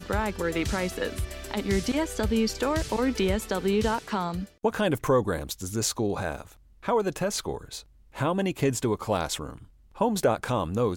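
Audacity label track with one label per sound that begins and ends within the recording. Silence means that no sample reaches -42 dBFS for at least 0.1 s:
4.640000	6.530000	sound
6.830000	7.810000	sound
8.150000	9.640000	sound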